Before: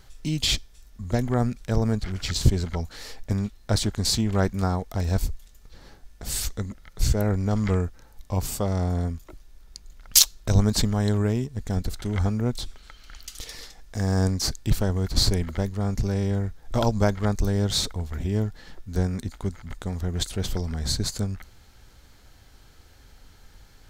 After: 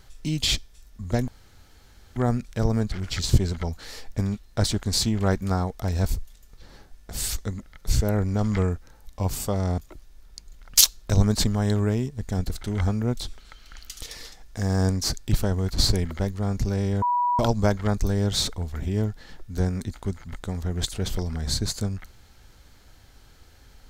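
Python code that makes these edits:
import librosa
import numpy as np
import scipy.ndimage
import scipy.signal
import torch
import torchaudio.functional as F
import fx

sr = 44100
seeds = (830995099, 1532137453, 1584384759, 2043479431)

y = fx.edit(x, sr, fx.insert_room_tone(at_s=1.28, length_s=0.88),
    fx.cut(start_s=8.9, length_s=0.26),
    fx.bleep(start_s=16.4, length_s=0.37, hz=975.0, db=-19.5), tone=tone)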